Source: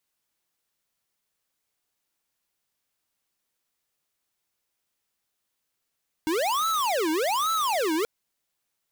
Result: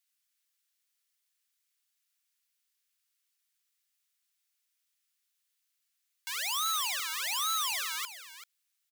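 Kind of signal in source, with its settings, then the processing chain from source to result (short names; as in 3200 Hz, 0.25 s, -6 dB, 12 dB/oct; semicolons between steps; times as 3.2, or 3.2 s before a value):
siren wail 310–1320 Hz 1.2/s square -25 dBFS 1.78 s
Bessel high-pass 2000 Hz, order 4; echo 0.387 s -13 dB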